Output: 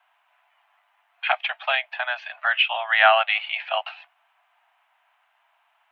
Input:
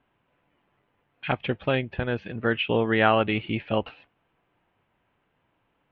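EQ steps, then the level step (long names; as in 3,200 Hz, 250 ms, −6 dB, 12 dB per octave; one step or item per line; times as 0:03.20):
Butterworth high-pass 650 Hz 96 dB per octave
dynamic equaliser 1,000 Hz, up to −7 dB, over −39 dBFS, Q 2.4
+8.5 dB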